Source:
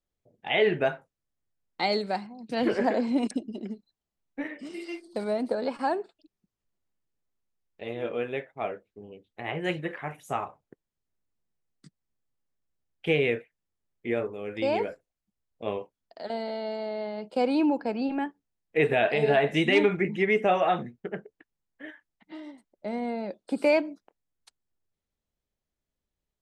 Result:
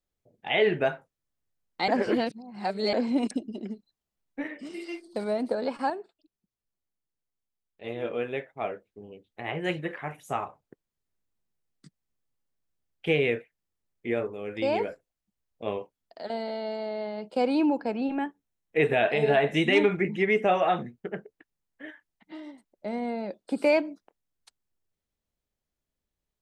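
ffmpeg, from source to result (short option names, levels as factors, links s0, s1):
-filter_complex "[0:a]asettb=1/sr,asplit=3[s0][s1][s2];[s0]atrim=end=17.914[s3];[s1]atrim=start=17.91:end=19.84,asetpts=PTS-STARTPTS,afade=t=in:d=0.004:c=qsin,afade=t=out:st=1.926:d=0.004:c=qsin,asuperstop=centerf=4700:order=4:qfactor=7.5[s4];[s2]atrim=start=19.836[s5];[s3][s4]acrossfade=d=0.004:c1=hsin:c2=qsin[s6];[s6][s5]acrossfade=d=0.004:c1=qsin:c2=hsin,asplit=5[s7][s8][s9][s10][s11];[s7]atrim=end=1.882[s12];[s8]atrim=start=1.878:end=2.932,asetpts=PTS-STARTPTS,areverse[s13];[s9]atrim=start=2.928:end=5.902[s14];[s10]atrim=start=5.898:end=7.842,asetpts=PTS-STARTPTS,volume=0.473[s15];[s11]atrim=start=7.838[s16];[s12][s13]acrossfade=d=0.004:c1=hsin:c2=hsin[s17];[s17][s14]acrossfade=d=0.004:c1=hsin:c2=hsin[s18];[s18][s15]acrossfade=d=0.004:c1=hsin:c2=hsin[s19];[s19][s16]acrossfade=d=0.004:c1=hsin:c2=hsin"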